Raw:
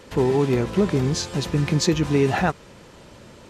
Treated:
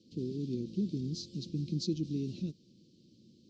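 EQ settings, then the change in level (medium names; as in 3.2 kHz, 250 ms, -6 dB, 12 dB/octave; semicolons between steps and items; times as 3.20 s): elliptic band-stop 320–4100 Hz, stop band 50 dB; cabinet simulation 240–5600 Hz, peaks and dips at 280 Hz -7 dB, 410 Hz -9 dB, 700 Hz -6 dB, 1.7 kHz -6 dB, 3.7 kHz -3 dB; treble shelf 3.3 kHz -11.5 dB; -3.5 dB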